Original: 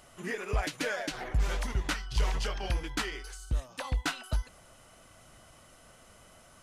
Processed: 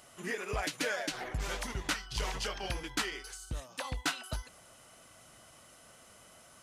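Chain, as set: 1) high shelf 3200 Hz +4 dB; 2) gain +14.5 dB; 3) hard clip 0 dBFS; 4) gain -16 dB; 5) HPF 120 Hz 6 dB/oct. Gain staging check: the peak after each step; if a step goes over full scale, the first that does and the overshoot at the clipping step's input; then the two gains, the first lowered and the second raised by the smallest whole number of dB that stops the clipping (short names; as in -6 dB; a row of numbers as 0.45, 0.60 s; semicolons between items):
-18.0, -3.5, -3.5, -19.5, -19.5 dBFS; no overload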